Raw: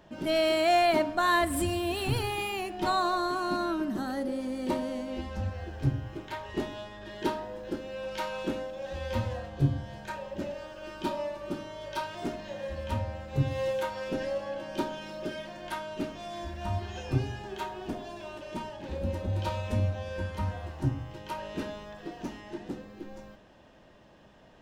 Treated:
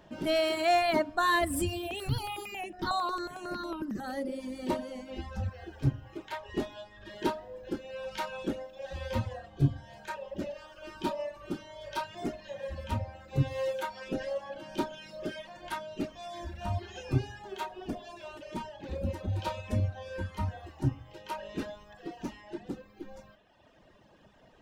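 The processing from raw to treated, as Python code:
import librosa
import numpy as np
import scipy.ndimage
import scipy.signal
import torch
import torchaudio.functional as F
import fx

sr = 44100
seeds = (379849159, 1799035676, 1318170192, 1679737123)

y = fx.dereverb_blind(x, sr, rt60_s=1.4)
y = fx.phaser_held(y, sr, hz=11.0, low_hz=460.0, high_hz=4600.0, at=(1.86, 4.03), fade=0.02)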